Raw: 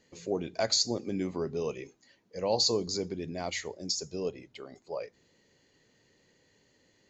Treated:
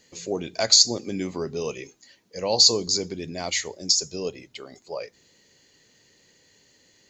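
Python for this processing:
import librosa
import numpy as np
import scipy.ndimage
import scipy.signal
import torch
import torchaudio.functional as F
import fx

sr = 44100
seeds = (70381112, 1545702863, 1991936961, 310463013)

y = fx.high_shelf(x, sr, hz=2700.0, db=11.0)
y = y * 10.0 ** (3.0 / 20.0)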